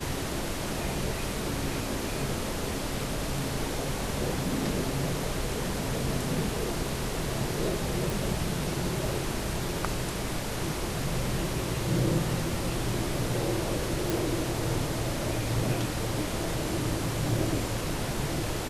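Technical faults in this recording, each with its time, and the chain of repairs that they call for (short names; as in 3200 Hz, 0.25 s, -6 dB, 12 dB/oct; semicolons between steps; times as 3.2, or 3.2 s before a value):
8.1 pop
14.1 pop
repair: de-click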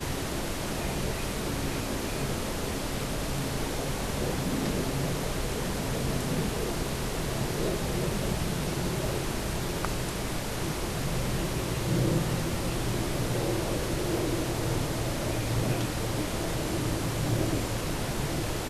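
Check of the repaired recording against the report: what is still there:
none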